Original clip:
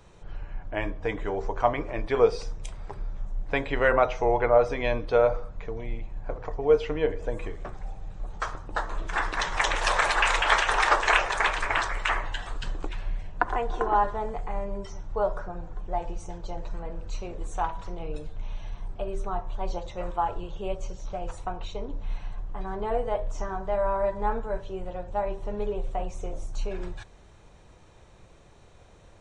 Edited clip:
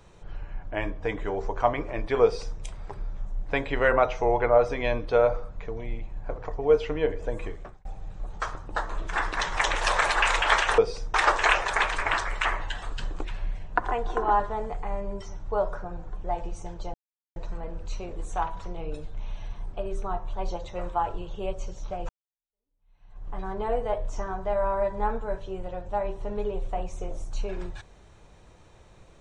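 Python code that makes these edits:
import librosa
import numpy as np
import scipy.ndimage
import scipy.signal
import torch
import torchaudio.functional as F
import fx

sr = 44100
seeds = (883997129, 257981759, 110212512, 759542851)

y = fx.edit(x, sr, fx.duplicate(start_s=2.23, length_s=0.36, to_s=10.78),
    fx.fade_out_span(start_s=7.5, length_s=0.35),
    fx.insert_silence(at_s=16.58, length_s=0.42),
    fx.fade_in_span(start_s=21.31, length_s=1.19, curve='exp'), tone=tone)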